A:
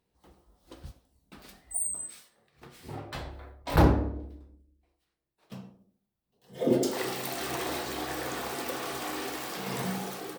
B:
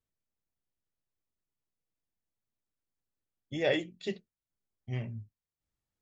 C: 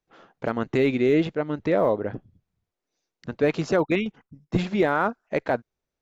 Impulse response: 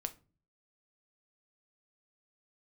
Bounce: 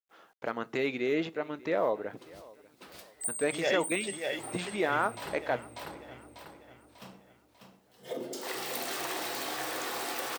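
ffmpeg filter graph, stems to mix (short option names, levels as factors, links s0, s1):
-filter_complex "[0:a]acompressor=threshold=0.0282:ratio=10,adelay=1500,volume=0.944,asplit=3[s0][s1][s2];[s1]volume=0.355[s3];[s2]volume=0.631[s4];[1:a]volume=1.19,asplit=2[s5][s6];[s6]volume=0.596[s7];[2:a]volume=0.422,asplit=4[s8][s9][s10][s11];[s9]volume=0.668[s12];[s10]volume=0.119[s13];[s11]apad=whole_len=523997[s14];[s0][s14]sidechaincompress=threshold=0.0126:ratio=8:attack=8.6:release=481[s15];[3:a]atrim=start_sample=2205[s16];[s3][s12]amix=inputs=2:normalize=0[s17];[s17][s16]afir=irnorm=-1:irlink=0[s18];[s4][s7][s13]amix=inputs=3:normalize=0,aecho=0:1:594|1188|1782|2376|2970|3564:1|0.45|0.202|0.0911|0.041|0.0185[s19];[s15][s5][s8][s18][s19]amix=inputs=5:normalize=0,highpass=f=620:p=1,acrusher=bits=11:mix=0:aa=0.000001"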